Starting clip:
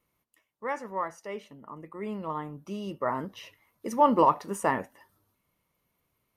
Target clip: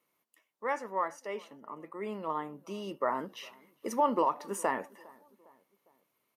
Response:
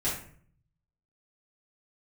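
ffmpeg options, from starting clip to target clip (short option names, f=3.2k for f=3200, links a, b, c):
-filter_complex "[0:a]highpass=270,alimiter=limit=-17.5dB:level=0:latency=1:release=282,asplit=2[a][b];[b]adelay=406,lowpass=f=1.5k:p=1,volume=-24dB,asplit=2[c][d];[d]adelay=406,lowpass=f=1.5k:p=1,volume=0.54,asplit=2[e][f];[f]adelay=406,lowpass=f=1.5k:p=1,volume=0.54[g];[c][e][g]amix=inputs=3:normalize=0[h];[a][h]amix=inputs=2:normalize=0"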